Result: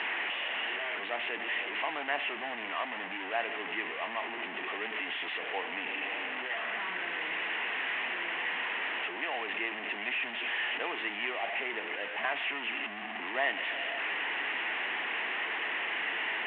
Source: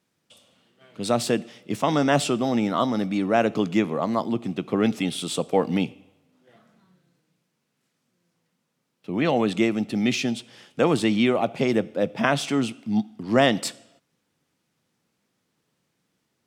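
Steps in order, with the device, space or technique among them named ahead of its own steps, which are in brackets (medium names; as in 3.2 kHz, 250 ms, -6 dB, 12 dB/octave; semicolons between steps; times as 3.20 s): 9.10–10.14 s: high-pass 130 Hz 6 dB/octave; digital answering machine (band-pass 400–3000 Hz; one-bit delta coder 16 kbps, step -20 dBFS; cabinet simulation 500–3600 Hz, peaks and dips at 530 Hz -10 dB, 1.3 kHz -6 dB, 1.9 kHz +8 dB, 2.8 kHz +6 dB); trim -8.5 dB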